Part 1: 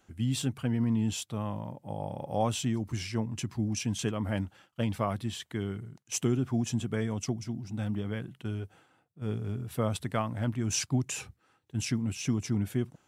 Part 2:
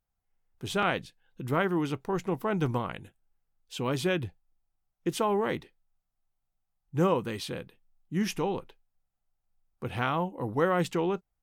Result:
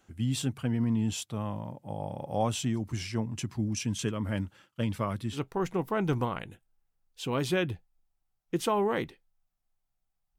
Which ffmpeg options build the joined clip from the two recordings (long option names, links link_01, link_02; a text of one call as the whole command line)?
ffmpeg -i cue0.wav -i cue1.wav -filter_complex "[0:a]asettb=1/sr,asplit=3[link_01][link_02][link_03];[link_01]atrim=end=3.614[link_04];[link_02]atrim=start=3.61:end=5.38,asetpts=PTS-STARTPTS,afade=type=in:duration=0.004:curve=qsin,afade=type=out:start_time=1.766:duration=0.004:curve=qsin,equalizer=frequency=740:width=5.2:gain=-10[link_05];[link_03]atrim=start=5.376[link_06];[link_04][link_05]acrossfade=duration=0.004:curve1=hsin:curve2=qsin[link_07];[link_07][link_06]acrossfade=duration=0.004:curve1=qsin:curve2=hsin,apad=whole_dur=10.38,atrim=end=10.38,atrim=end=5.38,asetpts=PTS-STARTPTS[link_08];[1:a]atrim=start=1.85:end=6.91,asetpts=PTS-STARTPTS[link_09];[link_08][link_09]acrossfade=duration=0.06:curve1=tri:curve2=tri" out.wav